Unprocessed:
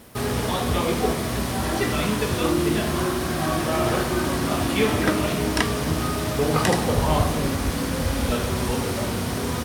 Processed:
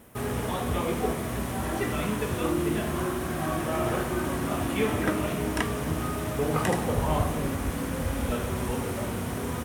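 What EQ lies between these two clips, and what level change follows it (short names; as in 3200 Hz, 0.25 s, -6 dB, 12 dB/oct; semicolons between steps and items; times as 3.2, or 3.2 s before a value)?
bell 4600 Hz -10 dB 0.81 oct; -5.0 dB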